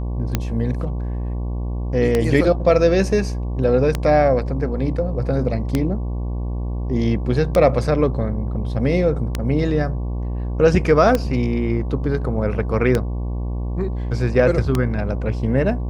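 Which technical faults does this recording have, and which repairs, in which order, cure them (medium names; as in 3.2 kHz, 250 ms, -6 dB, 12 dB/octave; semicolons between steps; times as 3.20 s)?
buzz 60 Hz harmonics 19 -24 dBFS
tick 33 1/3 rpm -5 dBFS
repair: de-click; de-hum 60 Hz, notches 19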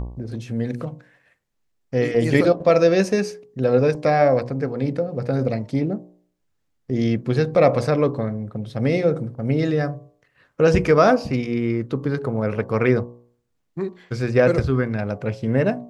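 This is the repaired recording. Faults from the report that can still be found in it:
nothing left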